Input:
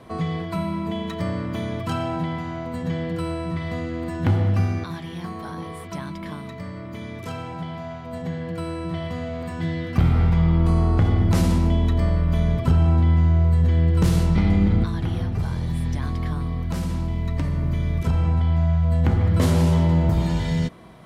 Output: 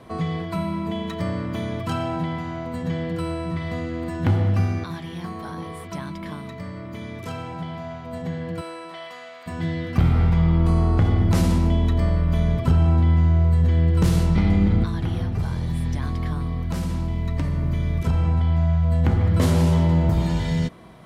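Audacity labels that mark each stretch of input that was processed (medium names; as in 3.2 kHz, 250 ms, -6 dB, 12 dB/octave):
8.600000	9.460000	high-pass 450 Hz -> 1.2 kHz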